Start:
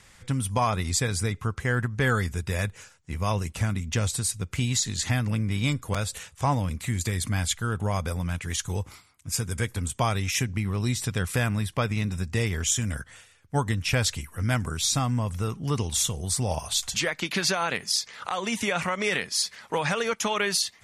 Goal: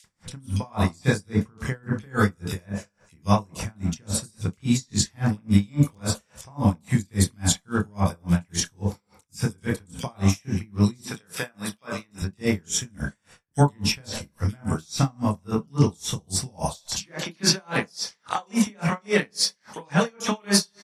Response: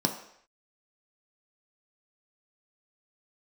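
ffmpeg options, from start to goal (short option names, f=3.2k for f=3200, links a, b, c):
-filter_complex "[0:a]asettb=1/sr,asplit=3[a][b][c];[a]atrim=end=11.014[d];[b]atrim=start=11.01:end=12.18,asetpts=PTS-STARTPTS,afade=t=in:d=0.004:c=qsin,afade=t=out:st=1.166:d=0.004:c=qsin,highpass=f=740:p=1[e];[c]atrim=start=12.176[f];[d][e]acrossfade=d=0.004:c1=hsin:c2=qsin[g];[g][f]acrossfade=d=0.004:c1=qsin:c2=hsin,acrossover=split=3000[h][i];[h]adelay=40[j];[j][i]amix=inputs=2:normalize=0,asplit=2[k][l];[1:a]atrim=start_sample=2205,adelay=26[m];[l][m]afir=irnorm=-1:irlink=0,volume=-10.5dB[n];[k][n]amix=inputs=2:normalize=0,aeval=exprs='val(0)*pow(10,-36*(0.5-0.5*cos(2*PI*3.6*n/s))/20)':c=same,volume=5.5dB"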